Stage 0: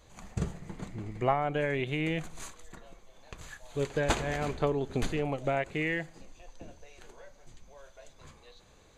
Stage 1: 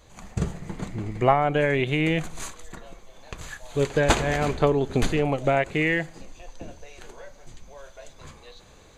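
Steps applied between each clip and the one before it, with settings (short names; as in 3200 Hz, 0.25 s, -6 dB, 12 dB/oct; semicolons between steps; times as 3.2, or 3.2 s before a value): AGC gain up to 3.5 dB; gain +4.5 dB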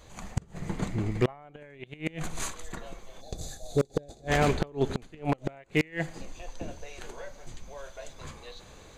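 flipped gate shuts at -13 dBFS, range -29 dB; spectral gain 3.21–4.28, 830–3400 Hz -18 dB; wavefolder -17 dBFS; gain +1.5 dB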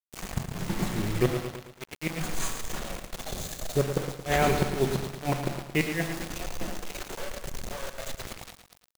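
shoebox room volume 1000 m³, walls furnished, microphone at 1 m; bit-crush 6-bit; lo-fi delay 0.112 s, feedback 55%, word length 8-bit, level -8.5 dB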